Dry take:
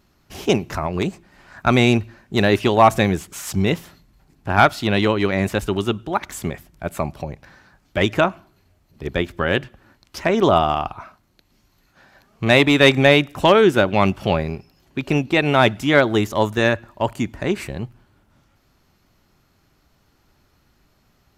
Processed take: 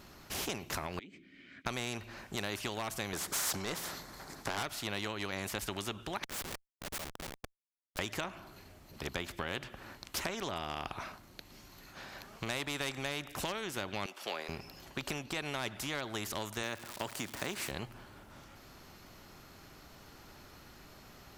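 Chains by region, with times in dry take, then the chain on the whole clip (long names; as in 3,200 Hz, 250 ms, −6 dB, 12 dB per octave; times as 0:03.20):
0:00.99–0:01.66: formant filter i + downward compressor 5 to 1, threshold −45 dBFS
0:03.13–0:04.63: parametric band 2,700 Hz −13 dB 0.69 octaves + mid-hump overdrive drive 21 dB, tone 4,100 Hz, clips at −2.5 dBFS
0:06.24–0:07.99: high-pass filter 740 Hz 6 dB per octave + transient designer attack −11 dB, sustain −4 dB + comparator with hysteresis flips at −38.5 dBFS
0:14.06–0:14.49: high-pass filter 400 Hz 24 dB per octave + multiband upward and downward expander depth 70%
0:16.62–0:17.70: high-pass filter 150 Hz + surface crackle 360 per second −36 dBFS
whole clip: downward compressor 6 to 1, threshold −26 dBFS; every bin compressed towards the loudest bin 2 to 1; level −6 dB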